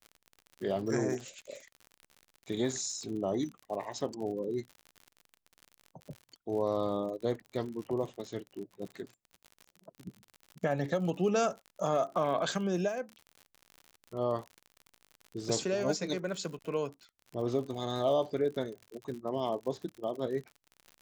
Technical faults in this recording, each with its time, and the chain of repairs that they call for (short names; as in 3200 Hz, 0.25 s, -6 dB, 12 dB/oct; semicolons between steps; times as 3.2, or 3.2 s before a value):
crackle 58/s -40 dBFS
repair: de-click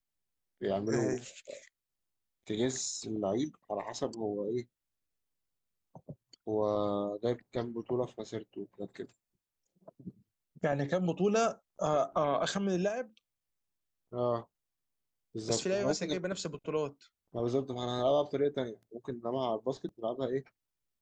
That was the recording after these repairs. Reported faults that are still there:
none